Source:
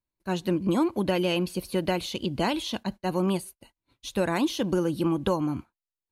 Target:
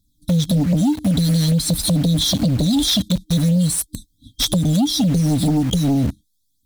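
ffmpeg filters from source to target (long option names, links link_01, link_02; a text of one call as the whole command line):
ffmpeg -i in.wav -filter_complex "[0:a]aphaser=in_gain=1:out_gain=1:delay=2:decay=0.43:speed=0.49:type=triangular,asetrate=40517,aresample=44100,afftfilt=real='re*(1-between(b*sr/4096,310,3200))':imag='im*(1-between(b*sr/4096,310,3200))':win_size=4096:overlap=0.75,asplit=2[link_01][link_02];[link_02]acrusher=bits=6:mix=0:aa=0.000001,volume=-4dB[link_03];[link_01][link_03]amix=inputs=2:normalize=0,acompressor=threshold=-33dB:ratio=8,aeval=exprs='0.0794*sin(PI/2*2.82*val(0)/0.0794)':channel_layout=same,volume=9dB" out.wav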